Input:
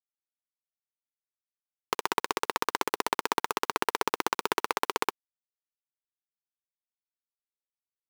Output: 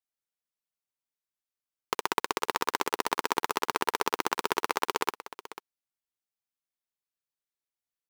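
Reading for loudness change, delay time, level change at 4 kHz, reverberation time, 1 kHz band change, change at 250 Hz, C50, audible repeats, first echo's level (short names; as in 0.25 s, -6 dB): 0.0 dB, 0.493 s, 0.0 dB, none, 0.0 dB, 0.0 dB, none, 1, -15.5 dB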